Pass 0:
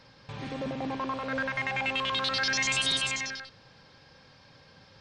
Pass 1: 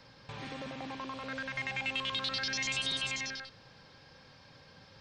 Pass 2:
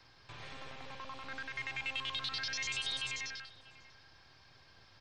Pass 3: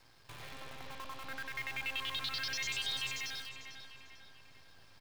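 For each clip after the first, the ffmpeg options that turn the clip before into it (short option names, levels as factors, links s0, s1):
-filter_complex "[0:a]acrossover=split=340|840|2200|6400[s0][s1][s2][s3][s4];[s0]acompressor=threshold=0.00562:ratio=4[s5];[s1]acompressor=threshold=0.00355:ratio=4[s6];[s2]acompressor=threshold=0.00631:ratio=4[s7];[s3]acompressor=threshold=0.0282:ratio=4[s8];[s4]acompressor=threshold=0.002:ratio=4[s9];[s5][s6][s7][s8][s9]amix=inputs=5:normalize=0,volume=0.891"
-filter_complex "[0:a]acrossover=split=140|730|1500[s0][s1][s2][s3];[s1]aeval=exprs='abs(val(0))':c=same[s4];[s0][s4][s2][s3]amix=inputs=4:normalize=0,asplit=2[s5][s6];[s6]adelay=641.4,volume=0.141,highshelf=f=4000:g=-14.4[s7];[s5][s7]amix=inputs=2:normalize=0,volume=0.668"
-filter_complex "[0:a]acrusher=bits=9:dc=4:mix=0:aa=0.000001,asplit=2[s0][s1];[s1]adelay=447,lowpass=f=4500:p=1,volume=0.355,asplit=2[s2][s3];[s3]adelay=447,lowpass=f=4500:p=1,volume=0.48,asplit=2[s4][s5];[s5]adelay=447,lowpass=f=4500:p=1,volume=0.48,asplit=2[s6][s7];[s7]adelay=447,lowpass=f=4500:p=1,volume=0.48,asplit=2[s8][s9];[s9]adelay=447,lowpass=f=4500:p=1,volume=0.48[s10];[s0][s2][s4][s6][s8][s10]amix=inputs=6:normalize=0"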